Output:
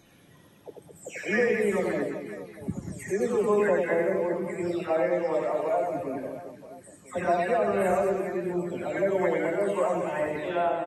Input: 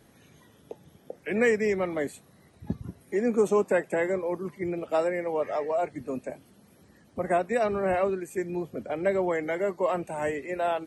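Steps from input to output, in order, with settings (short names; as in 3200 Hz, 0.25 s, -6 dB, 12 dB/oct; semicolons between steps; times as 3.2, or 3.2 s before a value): spectral delay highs early, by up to 0.464 s; reverse bouncing-ball echo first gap 90 ms, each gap 1.4×, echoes 5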